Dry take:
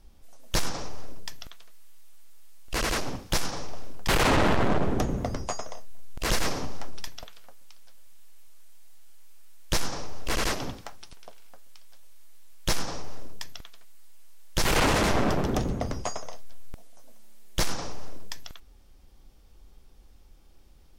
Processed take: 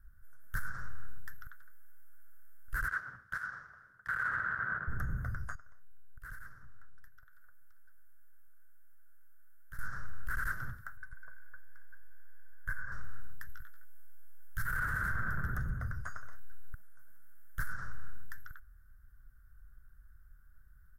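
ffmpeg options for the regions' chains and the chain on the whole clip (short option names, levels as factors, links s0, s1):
-filter_complex "[0:a]asettb=1/sr,asplit=3[s0][s1][s2];[s0]atrim=end=2.884[s3];[s1]atrim=start=2.88:end=4.88,asetpts=PTS-STARTPTS,afade=t=in:d=0.004:c=qsin,afade=t=out:st=1.996:d=0.004:c=qsin,highpass=f=630:p=1,adynamicsmooth=sensitivity=0.5:basefreq=4700[s4];[s2]atrim=start=4.876[s5];[s3][s4]acrossfade=d=0.004:c1=hsin:c2=qsin[s6];[s6][s5]acrossfade=d=0.004:c1=qsin:c2=hsin,asettb=1/sr,asplit=3[s7][s8][s9];[s7]atrim=end=5.554[s10];[s8]atrim=start=5.55:end=9.79,asetpts=PTS-STARTPTS,afade=t=in:d=0.004:c=qsin,afade=t=out:st=4.236:d=0.004:c=qsin,acompressor=threshold=0.0112:ratio=5:attack=3.2:release=140:knee=1:detection=peak,agate=range=0.0224:threshold=0.0141:ratio=3:release=100:detection=peak[s11];[s9]atrim=start=9.786[s12];[s10][s11]acrossfade=d=0.004:c1=hsin:c2=qsin[s13];[s13][s12]acrossfade=d=0.004:c1=qsin:c2=hsin,asettb=1/sr,asplit=3[s14][s15][s16];[s14]atrim=end=10.974[s17];[s15]atrim=start=10.97:end=12.92,asetpts=PTS-STARTPTS,afade=t=in:d=0.004:c=qsin,afade=t=out:st=1.946:d=0.004:c=qsin,highshelf=f=2300:t=q:w=3:g=-6,acompressor=threshold=0.0224:ratio=4:attack=3.2:release=140:knee=1:detection=peak,aecho=1:1:1.9:0.56,atrim=end_sample=85995[s18];[s16]atrim=start=12.916[s19];[s17][s18]acrossfade=d=0.004:c1=hsin:c2=qsin[s20];[s20][s19]acrossfade=d=0.004:c1=qsin:c2=hsin,asettb=1/sr,asplit=3[s21][s22][s23];[s21]atrim=end=13.474[s24];[s22]atrim=start=13.47:end=14.66,asetpts=PTS-STARTPTS,afade=t=in:d=0.004:c=qsin,afade=t=out:st=1.186:d=0.004:c=qsin,equalizer=f=500:t=o:w=1.9:g=-13.5,asplit=2[s25][s26];[s26]adelay=18,volume=0.631[s27];[s25][s27]amix=inputs=2:normalize=0,atrim=end_sample=52479[s28];[s23]atrim=start=14.656[s29];[s24][s28]acrossfade=d=0.004:c1=hsin:c2=qsin[s30];[s30][s29]acrossfade=d=0.004:c1=qsin:c2=hsin,firequalizer=gain_entry='entry(120,0);entry(260,-21);entry(840,-23);entry(1500,12);entry(2400,-29);entry(6300,-28);entry(13000,-4)':delay=0.05:min_phase=1,alimiter=limit=0.0708:level=0:latency=1:release=89,equalizer=f=7500:w=0.58:g=8,volume=0.708"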